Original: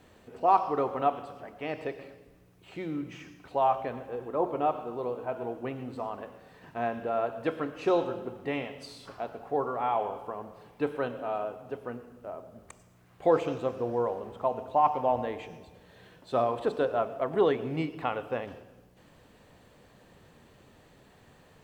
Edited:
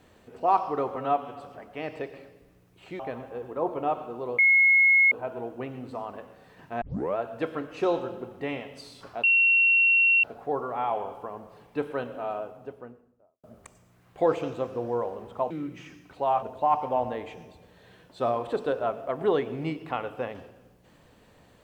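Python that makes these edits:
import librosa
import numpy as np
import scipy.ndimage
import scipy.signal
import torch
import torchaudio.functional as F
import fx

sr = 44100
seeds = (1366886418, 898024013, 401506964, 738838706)

y = fx.studio_fade_out(x, sr, start_s=11.35, length_s=1.13)
y = fx.edit(y, sr, fx.stretch_span(start_s=0.96, length_s=0.29, factor=1.5),
    fx.move(start_s=2.85, length_s=0.92, to_s=14.55),
    fx.insert_tone(at_s=5.16, length_s=0.73, hz=2170.0, db=-15.5),
    fx.tape_start(start_s=6.86, length_s=0.35),
    fx.insert_tone(at_s=9.28, length_s=1.0, hz=2730.0, db=-17.0), tone=tone)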